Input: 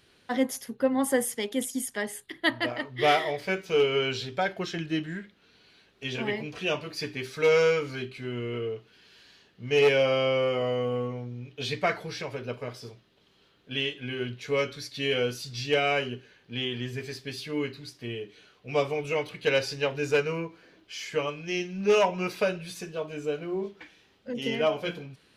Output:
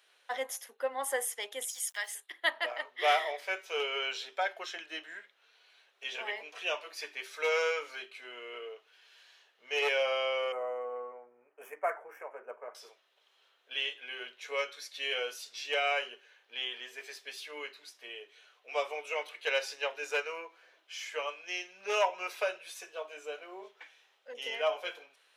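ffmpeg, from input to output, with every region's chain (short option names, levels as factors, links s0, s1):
-filter_complex "[0:a]asettb=1/sr,asplit=3[s0][s1][s2];[s0]atrim=end=1.684[s3];[s1]atrim=start=1.68:end=2.15,asetpts=PTS-STARTPTS,afade=t=in:d=0.004:c=qsin,afade=t=out:st=0.466:d=0.004:c=qsin,highpass=990,equalizer=f=5100:t=o:w=1.3:g=8,aeval=exprs='val(0)*gte(abs(val(0)),0.00316)':c=same[s4];[s2]atrim=start=2.146[s5];[s3][s4]acrossfade=d=0.004:c1=hsin:c2=qsin[s6];[s6][s5]acrossfade=d=0.004:c1=qsin:c2=hsin,asettb=1/sr,asplit=3[s7][s8][s9];[s7]atrim=end=10.524[s10];[s8]atrim=start=10.52:end=12.75,asetpts=PTS-STARTPTS,afade=t=in:d=0.004:c=qsin,afade=t=out:st=2.226:d=0.004:c=qsin,adynamicsmooth=sensitivity=7.5:basefreq=3500,asuperstop=centerf=4000:order=4:qfactor=0.51[s11];[s9]atrim=start=12.746[s12];[s10][s11]acrossfade=d=0.004:c1=hsin:c2=qsin[s13];[s13][s12]acrossfade=d=0.004:c1=qsin:c2=hsin,highpass=f=570:w=0.5412,highpass=f=570:w=1.3066,equalizer=f=4600:w=6.1:g=-7,volume=0.708"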